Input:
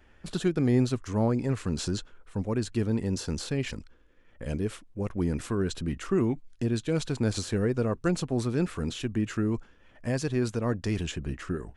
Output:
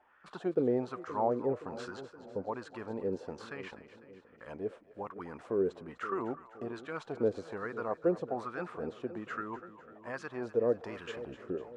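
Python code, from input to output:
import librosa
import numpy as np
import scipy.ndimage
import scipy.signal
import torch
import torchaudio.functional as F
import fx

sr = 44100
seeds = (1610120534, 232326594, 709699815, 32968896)

y = fx.zero_step(x, sr, step_db=-42.5, at=(10.61, 11.22))
y = fx.wah_lfo(y, sr, hz=1.2, low_hz=460.0, high_hz=1300.0, q=3.5)
y = fx.echo_split(y, sr, split_hz=570.0, low_ms=521, high_ms=250, feedback_pct=52, wet_db=-14.0)
y = F.gain(torch.from_numpy(y), 6.0).numpy()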